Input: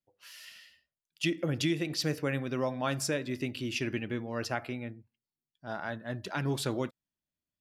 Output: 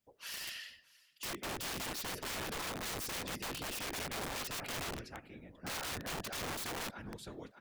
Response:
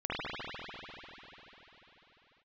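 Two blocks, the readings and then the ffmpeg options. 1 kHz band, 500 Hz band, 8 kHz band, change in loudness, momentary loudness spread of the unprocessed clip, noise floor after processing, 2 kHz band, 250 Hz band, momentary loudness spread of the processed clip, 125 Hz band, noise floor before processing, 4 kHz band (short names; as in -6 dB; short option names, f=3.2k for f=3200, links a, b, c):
-2.5 dB, -10.5 dB, +0.5 dB, -6.5 dB, 14 LU, -67 dBFS, -4.0 dB, -13.0 dB, 9 LU, -13.0 dB, under -85 dBFS, -2.0 dB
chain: -af "afftfilt=real='hypot(re,im)*cos(2*PI*random(0))':imag='hypot(re,im)*sin(2*PI*random(1))':win_size=512:overlap=0.75,aecho=1:1:610|1220:0.0794|0.0262,areverse,acompressor=threshold=-45dB:ratio=12,areverse,aeval=exprs='(mod(251*val(0)+1,2)-1)/251':c=same,volume=13dB"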